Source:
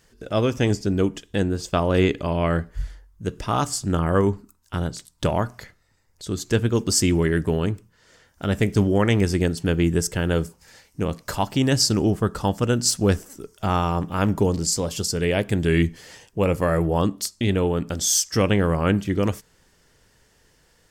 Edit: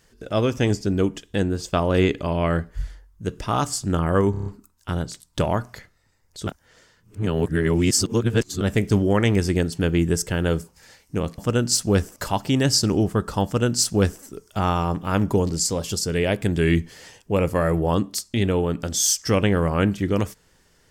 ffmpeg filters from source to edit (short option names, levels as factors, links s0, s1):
-filter_complex "[0:a]asplit=10[s0][s1][s2][s3][s4][s5][s6][s7][s8][s9];[s0]atrim=end=4.342[s10];[s1]atrim=start=4.308:end=4.342[s11];[s2]atrim=start=4.308:end=4.342[s12];[s3]atrim=start=4.308:end=4.342[s13];[s4]atrim=start=4.308:end=4.342[s14];[s5]atrim=start=4.308:end=6.322[s15];[s6]atrim=start=6.318:end=8.462,asetpts=PTS-STARTPTS,areverse[s16];[s7]atrim=start=8.458:end=11.232[s17];[s8]atrim=start=12.518:end=13.302[s18];[s9]atrim=start=11.228[s19];[s10][s11]acrossfade=d=0.004:c1=hsin:c2=hsin[s20];[s20][s12]acrossfade=d=0.004:c1=hsin:c2=hsin[s21];[s21][s13]acrossfade=d=0.004:c1=hsin:c2=hsin[s22];[s22][s14]acrossfade=d=0.004:c1=hsin:c2=hsin[s23];[s23][s15]acrossfade=d=0.004:c1=hsin:c2=hsin[s24];[s24][s16]acrossfade=d=0.004:c1=hsin:c2=hsin[s25];[s25][s17]acrossfade=d=0.004:c1=hsin:c2=hsin[s26];[s26][s18]acrossfade=d=0.004:c1=hsin:c2=hsin[s27];[s27][s19]acrossfade=d=0.004:c1=hsin:c2=hsin"